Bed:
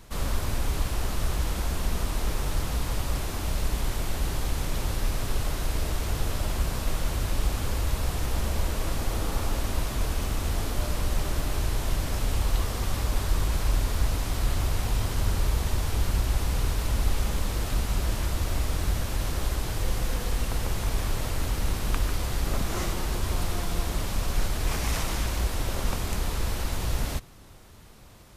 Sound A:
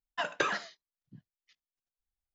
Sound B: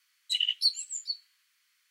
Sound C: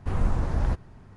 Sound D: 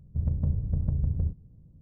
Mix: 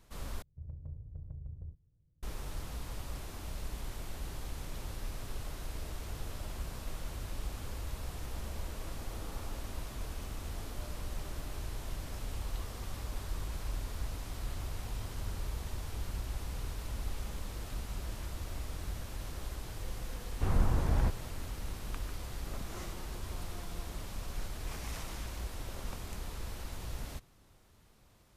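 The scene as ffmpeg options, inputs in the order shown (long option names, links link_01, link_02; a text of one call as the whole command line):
ffmpeg -i bed.wav -i cue0.wav -i cue1.wav -i cue2.wav -i cue3.wav -filter_complex "[0:a]volume=-13dB[link_01];[4:a]equalizer=frequency=210:width=2.6:gain=-11.5[link_02];[link_01]asplit=2[link_03][link_04];[link_03]atrim=end=0.424[link_05];[link_02]atrim=end=1.81,asetpts=PTS-STARTPTS,volume=-17dB[link_06];[link_04]atrim=start=2.226[link_07];[3:a]atrim=end=1.16,asetpts=PTS-STARTPTS,volume=-3.5dB,afade=type=in:duration=0.004:curve=hsin,afade=type=out:start_time=1.156:duration=0.004:curve=hsin,adelay=20350[link_08];[link_05][link_06]acrossfade=duration=0.004:curve1=hsin:curve2=hsin[link_09];[link_09][link_07]acrossfade=duration=0.004:curve1=hsin:curve2=hsin[link_10];[link_10][link_08]amix=inputs=2:normalize=0" out.wav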